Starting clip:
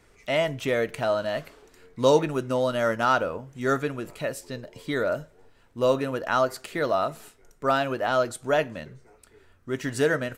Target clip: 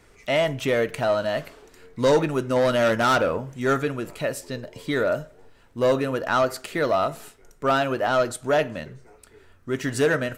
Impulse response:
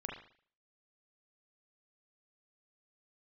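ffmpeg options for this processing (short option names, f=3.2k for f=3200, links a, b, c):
-filter_complex "[0:a]asoftclip=type=tanh:threshold=-16dB,asettb=1/sr,asplit=3[a][b][c];[a]atrim=end=2.564[d];[b]atrim=start=2.56:end=3.55,asetpts=PTS-STARTPTS,afade=t=in:d=0.004:c=qsin,afade=t=out:st=0.986:d=0.004:c=qsin,aeval=exprs='0.158*(cos(1*acos(clip(val(0)/0.158,-1,1)))-cos(1*PI/2))+0.0282*(cos(5*acos(clip(val(0)/0.158,-1,1)))-cos(5*PI/2))+0.00708*(cos(7*acos(clip(val(0)/0.158,-1,1)))-cos(7*PI/2))':c=same[e];[c]atrim=start=3.546[f];[d][e]acrossfade=d=0.004:c1=hsin:c2=qsin[g];[g][f]acrossfade=d=0.004:c1=qsin:c2=hsin,asplit=2[h][i];[1:a]atrim=start_sample=2205[j];[i][j]afir=irnorm=-1:irlink=0,volume=-17.5dB[k];[h][k]amix=inputs=2:normalize=0,volume=3dB"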